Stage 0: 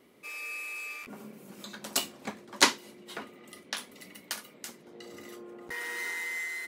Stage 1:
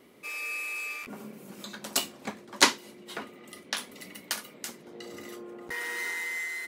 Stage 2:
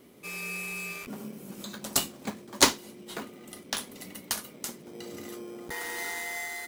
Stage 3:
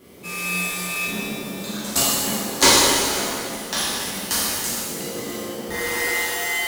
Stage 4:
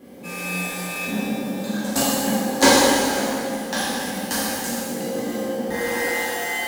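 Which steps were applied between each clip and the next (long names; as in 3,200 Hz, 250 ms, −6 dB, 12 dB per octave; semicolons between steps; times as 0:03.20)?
speech leveller within 4 dB 2 s
low-shelf EQ 280 Hz +7 dB; in parallel at −6.5 dB: decimation without filtering 16×; on the sum: high-shelf EQ 4,700 Hz +8.5 dB; level −4 dB
speech leveller within 4 dB 2 s; reverb with rising layers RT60 1.9 s, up +7 semitones, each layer −8 dB, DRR −9.5 dB; level −1 dB
hollow resonant body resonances 250/530/770/1,600 Hz, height 14 dB, ringing for 35 ms; level −4.5 dB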